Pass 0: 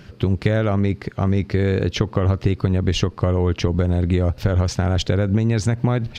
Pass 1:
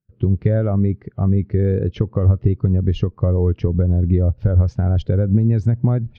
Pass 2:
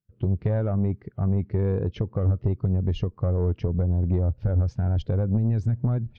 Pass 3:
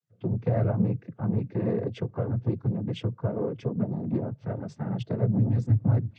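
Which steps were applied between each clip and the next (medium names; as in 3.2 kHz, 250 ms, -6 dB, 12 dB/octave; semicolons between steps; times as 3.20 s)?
gate with hold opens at -32 dBFS; treble shelf 3.1 kHz -9.5 dB; spectral contrast expander 1.5:1
saturation -10.5 dBFS, distortion -17 dB; trim -5 dB
noise-vocoded speech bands 16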